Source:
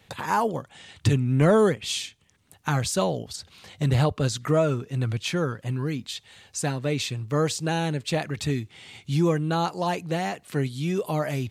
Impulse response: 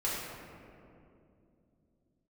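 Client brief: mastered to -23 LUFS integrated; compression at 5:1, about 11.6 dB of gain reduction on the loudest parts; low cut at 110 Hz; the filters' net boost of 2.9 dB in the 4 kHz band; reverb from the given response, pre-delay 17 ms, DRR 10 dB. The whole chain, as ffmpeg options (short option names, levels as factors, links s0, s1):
-filter_complex "[0:a]highpass=110,equalizer=f=4000:t=o:g=3.5,acompressor=threshold=0.0398:ratio=5,asplit=2[s0][s1];[1:a]atrim=start_sample=2205,adelay=17[s2];[s1][s2]afir=irnorm=-1:irlink=0,volume=0.141[s3];[s0][s3]amix=inputs=2:normalize=0,volume=2.99"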